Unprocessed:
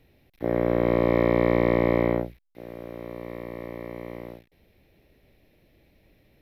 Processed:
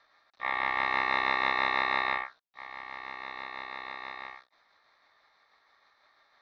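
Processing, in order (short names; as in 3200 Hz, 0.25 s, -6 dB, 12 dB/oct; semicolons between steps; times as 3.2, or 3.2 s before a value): delay-line pitch shifter +2 st; bell 240 Hz -4 dB 1.4 oct; in parallel at -3 dB: compressor, threshold -33 dBFS, peak gain reduction 14.5 dB; on the sum: speaker cabinet 150–3700 Hz, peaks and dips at 190 Hz -4 dB, 300 Hz +5 dB, 490 Hz -6 dB, 1400 Hz -3 dB, 2200 Hz +4 dB; ring modulator 1500 Hz; gain -1.5 dB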